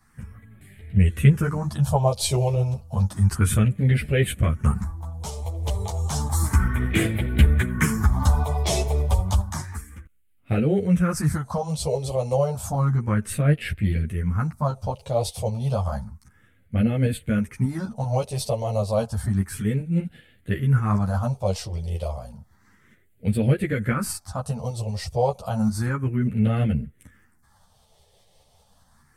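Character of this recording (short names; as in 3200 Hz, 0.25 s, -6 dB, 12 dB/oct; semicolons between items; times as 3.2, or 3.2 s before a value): phasing stages 4, 0.31 Hz, lowest notch 250–1000 Hz; tremolo saw up 5.1 Hz, depth 35%; a shimmering, thickened sound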